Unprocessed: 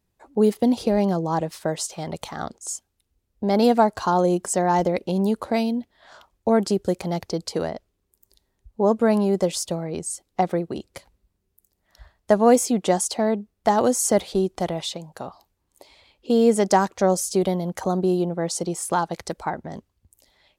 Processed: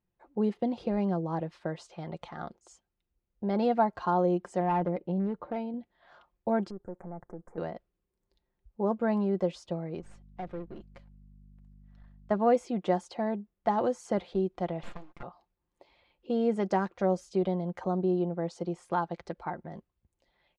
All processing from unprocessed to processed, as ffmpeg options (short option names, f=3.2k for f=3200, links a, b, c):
-filter_complex "[0:a]asettb=1/sr,asplit=3[a][b][c];[a]atrim=end=4.604[d];[b]atrim=start=4.6:end=5.74,asetpts=PTS-STARTPTS,afade=t=in:d=0.004:c=qsin,afade=t=out:st=1.136:d=0.004:c=qsin,lowpass=f=1.1k:p=1,aecho=1:1:6.7:0.33,atrim=end_sample=50274,asoftclip=type=hard:threshold=-16.5dB[e];[c]atrim=start=5.736[f];[d][e]acrossfade=d=0.004:c1=hsin:c2=qsin[g];[g][f]acrossfade=d=0.004:c1=qsin:c2=hsin,asettb=1/sr,asplit=3[h][i][j];[h]atrim=end=6.704[k];[i]atrim=start=6.7:end=7.58,asetpts=PTS-STARTPTS,afade=t=in:d=0.004:c=qsin,afade=t=out:st=0.876:d=0.004:c=qsin,aeval=exprs='if(lt(val(0),0),0.447*val(0),val(0))':c=same,asuperstop=centerf=3700:order=8:qfactor=0.65,acompressor=threshold=-35dB:ratio=2:attack=3.2:release=140:knee=1:detection=peak[l];[j]atrim=start=7.576[m];[k][l]acrossfade=d=0.004:c1=hsin:c2=qsin[n];[n][m]acrossfade=d=0.004:c1=qsin:c2=hsin,asettb=1/sr,asplit=3[o][p][q];[o]atrim=end=10.004[r];[p]atrim=start=10:end=12.31,asetpts=PTS-STARTPTS,afade=t=in:d=0.004:c=qsin,afade=t=out:st=2.306:d=0.004:c=qsin,aeval=exprs='if(lt(val(0),0),0.251*val(0),val(0))':c=same,aeval=exprs='val(0)+0.00708*(sin(2*PI*50*n/s)+sin(2*PI*2*50*n/s)/2+sin(2*PI*3*50*n/s)/3+sin(2*PI*4*50*n/s)/4+sin(2*PI*5*50*n/s)/5)':c=same,aeval=exprs='(tanh(10*val(0)+0.35)-tanh(0.35))/10':c=same[s];[q]atrim=start=12.306[t];[r][s]acrossfade=d=0.004:c1=hsin:c2=qsin[u];[u][t]acrossfade=d=0.004:c1=qsin:c2=hsin,asettb=1/sr,asplit=3[v][w][x];[v]atrim=end=14.834[y];[w]atrim=start=14.83:end=15.23,asetpts=PTS-STARTPTS,afade=t=in:d=0.004:c=qsin,afade=t=out:st=0.396:d=0.004:c=qsin,agate=range=-33dB:threshold=-50dB:ratio=3:release=100:detection=peak,aeval=exprs='abs(val(0))':c=same,acrusher=bits=4:mode=log:mix=0:aa=0.000001[z];[x]atrim=start=15.226[aa];[y][z]acrossfade=d=0.004:c1=hsin:c2=qsin[ab];[ab][aa]acrossfade=d=0.004:c1=qsin:c2=hsin,lowpass=2.6k,aecho=1:1:5.7:0.4,volume=-9dB"